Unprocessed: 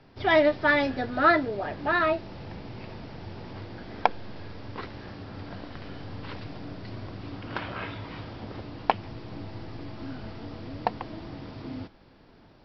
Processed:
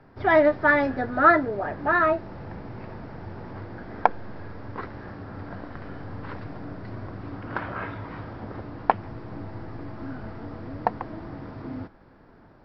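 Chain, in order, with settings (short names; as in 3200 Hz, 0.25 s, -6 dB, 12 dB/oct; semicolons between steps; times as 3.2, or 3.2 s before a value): resonant high shelf 2200 Hz -9.5 dB, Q 1.5; gain +2 dB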